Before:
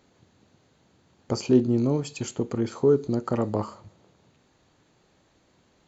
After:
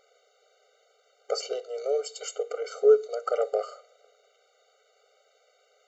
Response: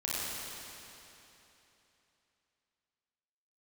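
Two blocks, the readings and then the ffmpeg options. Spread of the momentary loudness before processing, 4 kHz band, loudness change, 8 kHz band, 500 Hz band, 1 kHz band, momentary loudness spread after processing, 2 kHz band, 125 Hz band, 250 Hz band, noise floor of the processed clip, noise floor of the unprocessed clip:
10 LU, +1.5 dB, -2.5 dB, no reading, +1.0 dB, -0.5 dB, 13 LU, -1.0 dB, under -40 dB, under -25 dB, -67 dBFS, -65 dBFS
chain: -af "afftfilt=real='re*eq(mod(floor(b*sr/1024/390),2),1)':imag='im*eq(mod(floor(b*sr/1024/390),2),1)':win_size=1024:overlap=0.75,volume=1.58"

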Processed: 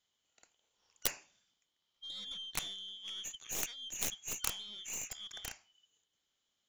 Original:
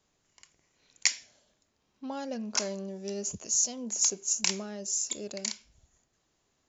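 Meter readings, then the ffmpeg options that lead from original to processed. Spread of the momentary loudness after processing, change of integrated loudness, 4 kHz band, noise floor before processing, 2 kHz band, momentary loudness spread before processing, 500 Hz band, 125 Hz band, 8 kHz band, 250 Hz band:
8 LU, -9.5 dB, -4.5 dB, -76 dBFS, -7.5 dB, 12 LU, -16.5 dB, -11.0 dB, no reading, -19.5 dB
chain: -af "afftfilt=real='real(if(lt(b,272),68*(eq(floor(b/68),0)*1+eq(floor(b/68),1)*3+eq(floor(b/68),2)*0+eq(floor(b/68),3)*2)+mod(b,68),b),0)':imag='imag(if(lt(b,272),68*(eq(floor(b/68),0)*1+eq(floor(b/68),1)*3+eq(floor(b/68),2)*0+eq(floor(b/68),3)*2)+mod(b,68),b),0)':win_size=2048:overlap=0.75,aeval=exprs='0.501*(cos(1*acos(clip(val(0)/0.501,-1,1)))-cos(1*PI/2))+0.0891*(cos(3*acos(clip(val(0)/0.501,-1,1)))-cos(3*PI/2))+0.0224*(cos(6*acos(clip(val(0)/0.501,-1,1)))-cos(6*PI/2))+0.0562*(cos(7*acos(clip(val(0)/0.501,-1,1)))-cos(7*PI/2))':c=same,aeval=exprs='(mod(6.68*val(0)+1,2)-1)/6.68':c=same,volume=1.19"

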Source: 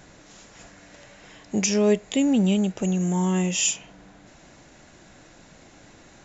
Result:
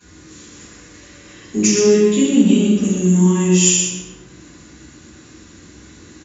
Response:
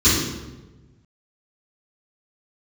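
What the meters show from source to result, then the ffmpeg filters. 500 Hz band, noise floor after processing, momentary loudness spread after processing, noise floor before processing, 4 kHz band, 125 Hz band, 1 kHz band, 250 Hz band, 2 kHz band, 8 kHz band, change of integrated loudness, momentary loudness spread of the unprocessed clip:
+9.0 dB, -44 dBFS, 7 LU, -52 dBFS, +7.0 dB, +8.5 dB, +1.0 dB, +8.5 dB, +5.5 dB, no reading, +8.5 dB, 5 LU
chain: -filter_complex "[0:a]lowshelf=f=430:g=-7.5,aecho=1:1:122:0.501[s0];[1:a]atrim=start_sample=2205[s1];[s0][s1]afir=irnorm=-1:irlink=0,volume=0.178"

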